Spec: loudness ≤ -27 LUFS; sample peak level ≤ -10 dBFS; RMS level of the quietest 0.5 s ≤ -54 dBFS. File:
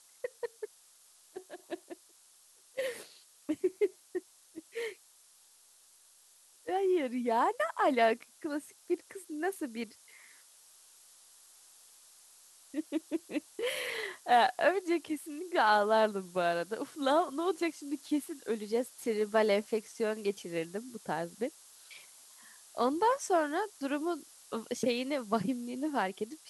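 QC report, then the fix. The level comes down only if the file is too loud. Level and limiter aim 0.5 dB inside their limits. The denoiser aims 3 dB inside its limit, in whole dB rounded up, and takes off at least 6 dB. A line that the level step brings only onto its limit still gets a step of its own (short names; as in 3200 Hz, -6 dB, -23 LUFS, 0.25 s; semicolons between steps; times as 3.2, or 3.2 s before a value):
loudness -33.0 LUFS: OK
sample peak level -13.5 dBFS: OK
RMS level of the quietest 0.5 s -62 dBFS: OK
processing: none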